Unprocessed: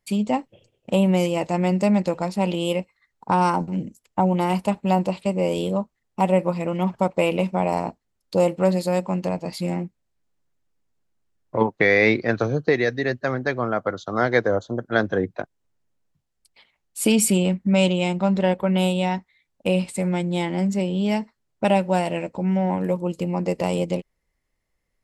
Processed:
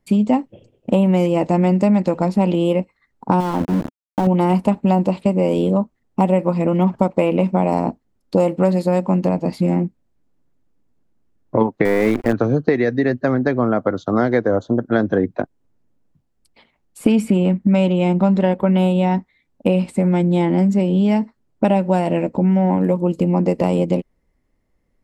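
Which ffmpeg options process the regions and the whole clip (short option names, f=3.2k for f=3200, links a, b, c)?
-filter_complex "[0:a]asettb=1/sr,asplit=3[a][b][c];[a]atrim=end=3.404[d];[b]atrim=start=3.4:end=4.27,asetpts=PTS-STARTPTS,afade=t=in:d=0.004:c=qsin,afade=t=out:st=0.866:d=0.004:c=qsin,acompressor=threshold=-25dB:ratio=2.5:attack=3.2:release=140:knee=1:detection=peak,aeval=exprs='val(0)*gte(abs(val(0)),0.0376)':c=same[e];[c]atrim=start=4.266[f];[d][e]acrossfade=d=0.004:c1=hsin:c2=qsin[g];[g][f]acrossfade=d=0.004:c1=qsin:c2=hsin,asettb=1/sr,asplit=3[h][i][j];[h]atrim=end=11.854[k];[i]atrim=start=11.85:end=12.33,asetpts=PTS-STARTPTS,afade=t=in:d=0.004:c=qsin,afade=t=out:st=0.476:d=0.004:c=qsin,lowpass=7.4k,equalizer=f=1.4k:t=o:w=0.28:g=-4,acrusher=bits=4:dc=4:mix=0:aa=0.000001[l];[j]atrim=start=12.326[m];[k][l]acrossfade=d=0.004:c1=hsin:c2=qsin[n];[n][m]acrossfade=d=0.004:c1=qsin:c2=hsin,equalizer=f=260:w=1.9:g=6.5,acrossover=split=830|2500[o][p][q];[o]acompressor=threshold=-23dB:ratio=4[r];[p]acompressor=threshold=-29dB:ratio=4[s];[q]acompressor=threshold=-39dB:ratio=4[t];[r][s][t]amix=inputs=3:normalize=0,tiltshelf=f=1.4k:g=6,volume=3.5dB"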